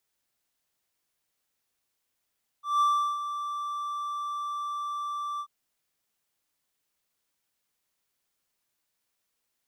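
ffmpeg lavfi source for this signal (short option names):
-f lavfi -i "aevalsrc='0.133*(1-4*abs(mod(1170*t+0.25,1)-0.5))':d=2.837:s=44100,afade=t=in:d=0.177,afade=t=out:st=0.177:d=0.368:silence=0.282,afade=t=out:st=2.77:d=0.067"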